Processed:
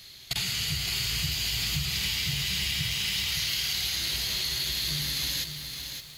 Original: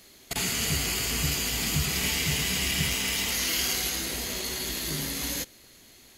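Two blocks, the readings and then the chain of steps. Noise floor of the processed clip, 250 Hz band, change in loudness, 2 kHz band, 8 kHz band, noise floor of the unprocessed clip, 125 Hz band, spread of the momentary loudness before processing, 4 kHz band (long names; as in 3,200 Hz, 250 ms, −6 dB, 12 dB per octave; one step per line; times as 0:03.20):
−47 dBFS, −7.5 dB, −1.0 dB, −2.0 dB, −4.5 dB, −54 dBFS, −1.5 dB, 5 LU, +2.5 dB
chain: octave-band graphic EQ 125/250/500/1,000/4,000/8,000 Hz +9/−11/−8/−3/+10/−5 dB
downward compressor, threshold −29 dBFS, peak gain reduction 10 dB
feedback echo at a low word length 565 ms, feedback 35%, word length 8 bits, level −6.5 dB
level +2 dB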